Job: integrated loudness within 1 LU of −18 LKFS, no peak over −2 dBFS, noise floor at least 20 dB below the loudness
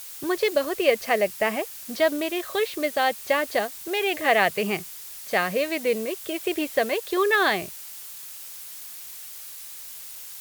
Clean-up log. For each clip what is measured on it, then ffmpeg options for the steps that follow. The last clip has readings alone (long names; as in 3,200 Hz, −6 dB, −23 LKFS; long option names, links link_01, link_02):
background noise floor −40 dBFS; target noise floor −45 dBFS; integrated loudness −24.5 LKFS; sample peak −5.5 dBFS; target loudness −18.0 LKFS
→ -af "afftdn=noise_reduction=6:noise_floor=-40"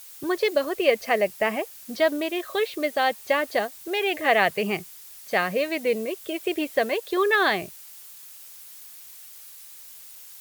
background noise floor −45 dBFS; integrated loudness −24.5 LKFS; sample peak −6.0 dBFS; target loudness −18.0 LKFS
→ -af "volume=6.5dB,alimiter=limit=-2dB:level=0:latency=1"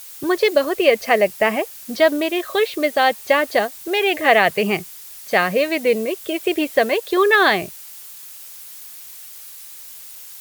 integrated loudness −18.0 LKFS; sample peak −2.0 dBFS; background noise floor −39 dBFS